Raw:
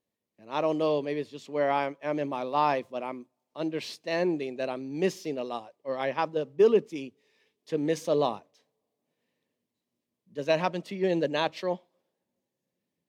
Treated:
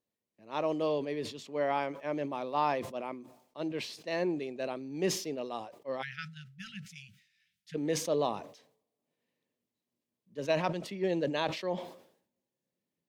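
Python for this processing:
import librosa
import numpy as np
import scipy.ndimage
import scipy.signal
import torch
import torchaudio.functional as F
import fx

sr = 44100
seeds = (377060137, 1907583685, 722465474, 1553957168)

y = fx.brickwall_bandstop(x, sr, low_hz=200.0, high_hz=1300.0, at=(6.01, 7.74), fade=0.02)
y = fx.sustainer(y, sr, db_per_s=95.0)
y = y * librosa.db_to_amplitude(-4.5)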